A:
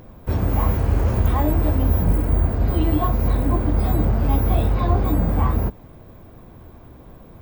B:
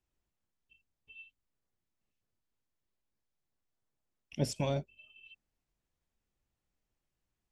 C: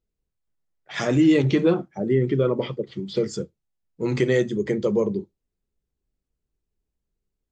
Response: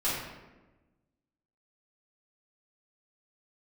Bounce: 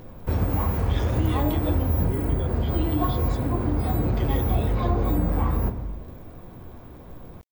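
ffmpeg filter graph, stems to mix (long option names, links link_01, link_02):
-filter_complex "[0:a]acompressor=threshold=-20dB:ratio=3,volume=-1dB,asplit=2[link_01][link_02];[link_02]volume=-14.5dB[link_03];[2:a]equalizer=frequency=3400:width_type=o:width=0.37:gain=10.5,acompressor=mode=upward:threshold=-22dB:ratio=2.5,aeval=exprs='val(0)*gte(abs(val(0)),0.00944)':channel_layout=same,volume=-14.5dB[link_04];[3:a]atrim=start_sample=2205[link_05];[link_03][link_05]afir=irnorm=-1:irlink=0[link_06];[link_01][link_04][link_06]amix=inputs=3:normalize=0"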